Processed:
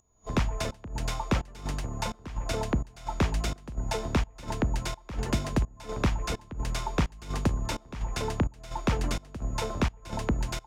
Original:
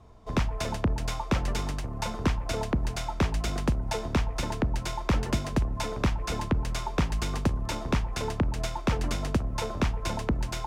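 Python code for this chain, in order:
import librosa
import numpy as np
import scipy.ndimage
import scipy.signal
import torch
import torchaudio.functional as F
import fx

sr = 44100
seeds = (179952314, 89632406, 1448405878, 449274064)

y = x + 10.0 ** (-55.0 / 20.0) * np.sin(2.0 * np.pi * 6800.0 * np.arange(len(x)) / sr)
y = fx.volume_shaper(y, sr, bpm=85, per_beat=1, depth_db=-22, release_ms=241.0, shape='slow start')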